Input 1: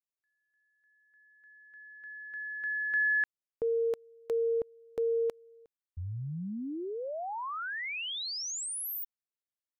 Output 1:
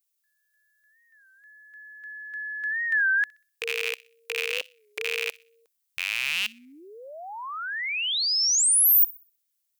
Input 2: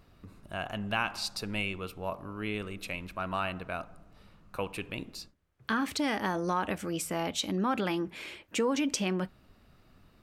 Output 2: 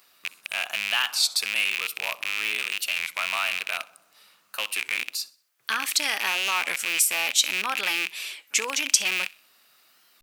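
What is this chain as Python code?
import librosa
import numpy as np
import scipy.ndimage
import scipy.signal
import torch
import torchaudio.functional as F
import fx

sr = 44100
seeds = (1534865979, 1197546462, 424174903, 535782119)

p1 = fx.rattle_buzz(x, sr, strikes_db=-45.0, level_db=-22.0)
p2 = fx.highpass(p1, sr, hz=660.0, slope=6)
p3 = fx.tilt_eq(p2, sr, slope=4.5)
p4 = p3 + fx.echo_wet_highpass(p3, sr, ms=63, feedback_pct=35, hz=2100.0, wet_db=-20.5, dry=0)
p5 = fx.record_warp(p4, sr, rpm=33.33, depth_cents=160.0)
y = F.gain(torch.from_numpy(p5), 2.5).numpy()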